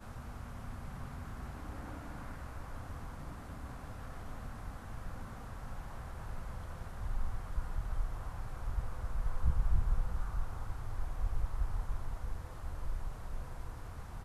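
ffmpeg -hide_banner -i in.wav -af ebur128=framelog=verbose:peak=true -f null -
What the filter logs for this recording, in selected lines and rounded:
Integrated loudness:
  I:         -42.9 LUFS
  Threshold: -52.9 LUFS
Loudness range:
  LRA:         8.0 LU
  Threshold: -62.4 LUFS
  LRA low:   -47.0 LUFS
  LRA high:  -39.0 LUFS
True peak:
  Peak:      -17.0 dBFS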